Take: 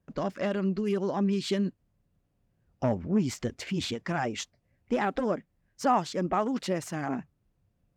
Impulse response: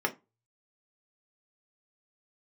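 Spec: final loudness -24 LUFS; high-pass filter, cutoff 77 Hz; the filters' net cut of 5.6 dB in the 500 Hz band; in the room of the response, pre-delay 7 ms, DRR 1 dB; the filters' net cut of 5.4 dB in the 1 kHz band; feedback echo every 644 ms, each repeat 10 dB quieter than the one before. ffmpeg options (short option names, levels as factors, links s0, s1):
-filter_complex "[0:a]highpass=77,equalizer=f=500:t=o:g=-6,equalizer=f=1000:t=o:g=-5,aecho=1:1:644|1288|1932|2576:0.316|0.101|0.0324|0.0104,asplit=2[s0][s1];[1:a]atrim=start_sample=2205,adelay=7[s2];[s1][s2]afir=irnorm=-1:irlink=0,volume=0.335[s3];[s0][s3]amix=inputs=2:normalize=0,volume=2"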